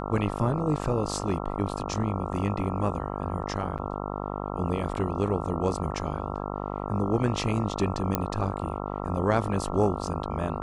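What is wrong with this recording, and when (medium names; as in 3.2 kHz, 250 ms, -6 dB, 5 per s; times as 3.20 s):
buzz 50 Hz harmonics 27 -33 dBFS
3.78–3.79 s: dropout 6.4 ms
8.15 s: pop -9 dBFS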